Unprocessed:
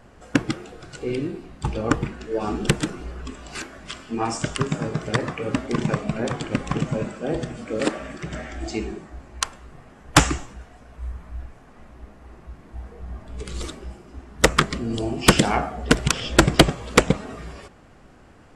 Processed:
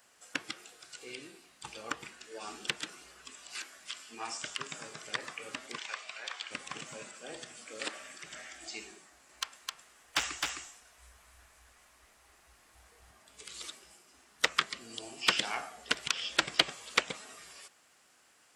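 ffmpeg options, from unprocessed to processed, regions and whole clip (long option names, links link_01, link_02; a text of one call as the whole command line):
ffmpeg -i in.wav -filter_complex "[0:a]asettb=1/sr,asplit=3[link_01][link_02][link_03];[link_01]atrim=end=5.784[link_04];[link_02]atrim=start=5.78:end=6.51,asetpts=PTS-STARTPTS,afade=type=in:duration=0.004:curve=qsin,afade=type=out:start_time=0.726:duration=0.004:curve=qsin,highpass=770,lowpass=4400,highshelf=frequency=2600:gain=7.5[link_05];[link_03]atrim=start=6.506[link_06];[link_04][link_05]acrossfade=duration=0.004:curve1=hsin:curve2=qsin[link_07];[link_07][link_06]acrossfade=duration=0.004:curve1=qsin:curve2=hsin,asettb=1/sr,asplit=3[link_08][link_09][link_10];[link_08]atrim=end=9.034[link_11];[link_09]atrim=start=9.03:end=13.11,asetpts=PTS-STARTPTS,afade=type=in:duration=0.004:curve=qsin,afade=type=out:start_time=4.076:duration=0.004:curve=qsin,asubboost=boost=7.5:cutoff=74,asoftclip=type=hard:threshold=-11.5dB,aecho=1:1:261:0.668,atrim=end_sample=179928[link_12];[link_10]atrim=start=13.106[link_13];[link_11][link_12]acrossfade=duration=0.004:curve1=hsin:curve2=qsin[link_14];[link_14][link_13]acrossfade=duration=0.004:curve1=qsin:curve2=hsin,acrossover=split=4500[link_15][link_16];[link_16]acompressor=threshold=-49dB:ratio=4:attack=1:release=60[link_17];[link_15][link_17]amix=inputs=2:normalize=0,aderivative,volume=3dB" out.wav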